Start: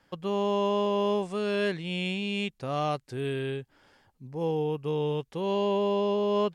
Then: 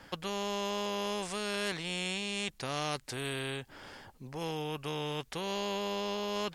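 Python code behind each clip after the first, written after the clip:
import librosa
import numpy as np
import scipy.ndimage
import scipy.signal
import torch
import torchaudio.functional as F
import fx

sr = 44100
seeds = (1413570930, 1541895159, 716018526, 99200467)

y = fx.spectral_comp(x, sr, ratio=2.0)
y = y * librosa.db_to_amplitude(-3.5)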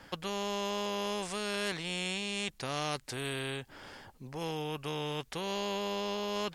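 y = x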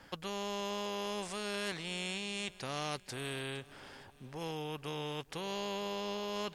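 y = fx.echo_feedback(x, sr, ms=461, feedback_pct=49, wet_db=-20)
y = y * librosa.db_to_amplitude(-3.5)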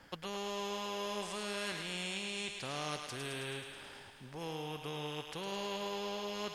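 y = fx.echo_thinned(x, sr, ms=107, feedback_pct=73, hz=570.0, wet_db=-5.5)
y = y * librosa.db_to_amplitude(-2.0)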